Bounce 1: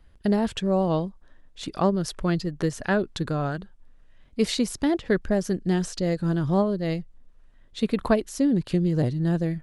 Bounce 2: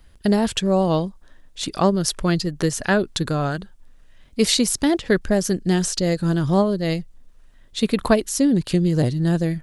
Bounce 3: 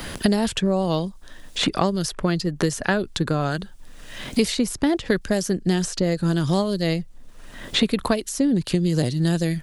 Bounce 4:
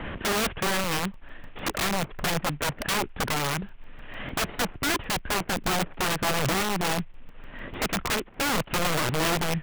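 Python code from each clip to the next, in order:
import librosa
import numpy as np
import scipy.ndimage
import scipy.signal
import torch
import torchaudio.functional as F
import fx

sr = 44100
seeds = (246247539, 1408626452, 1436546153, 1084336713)

y1 = fx.high_shelf(x, sr, hz=3800.0, db=10.5)
y1 = y1 * librosa.db_to_amplitude(4.0)
y2 = fx.band_squash(y1, sr, depth_pct=100)
y2 = y2 * librosa.db_to_amplitude(-2.5)
y3 = fx.cvsd(y2, sr, bps=16000)
y3 = (np.mod(10.0 ** (20.5 / 20.0) * y3 + 1.0, 2.0) - 1.0) / 10.0 ** (20.5 / 20.0)
y3 = fx.buffer_crackle(y3, sr, first_s=0.84, period_s=0.15, block=128, kind='zero')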